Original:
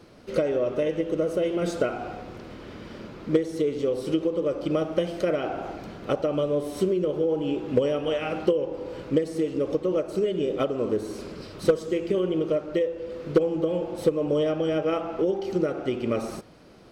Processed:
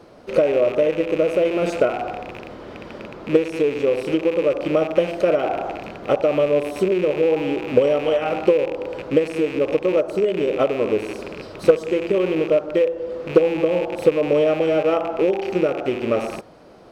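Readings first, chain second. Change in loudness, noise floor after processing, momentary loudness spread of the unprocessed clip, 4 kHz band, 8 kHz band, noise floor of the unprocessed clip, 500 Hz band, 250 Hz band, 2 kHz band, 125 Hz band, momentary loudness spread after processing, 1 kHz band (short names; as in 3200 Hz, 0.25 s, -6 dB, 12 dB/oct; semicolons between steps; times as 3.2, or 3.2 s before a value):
+6.0 dB, -38 dBFS, 11 LU, +4.5 dB, n/a, -42 dBFS, +7.0 dB, +3.5 dB, +9.0 dB, +1.5 dB, 12 LU, +7.5 dB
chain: rattling part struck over -39 dBFS, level -25 dBFS; bell 700 Hz +9 dB 1.9 oct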